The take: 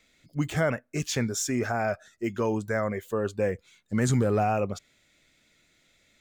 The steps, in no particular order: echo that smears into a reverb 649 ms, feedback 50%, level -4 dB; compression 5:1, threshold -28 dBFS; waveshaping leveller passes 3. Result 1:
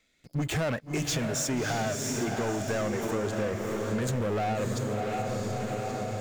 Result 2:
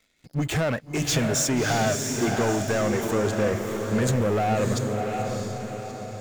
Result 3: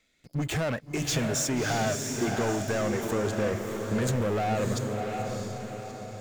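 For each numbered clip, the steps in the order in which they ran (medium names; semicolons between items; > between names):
waveshaping leveller > echo that smears into a reverb > compression; compression > waveshaping leveller > echo that smears into a reverb; waveshaping leveller > compression > echo that smears into a reverb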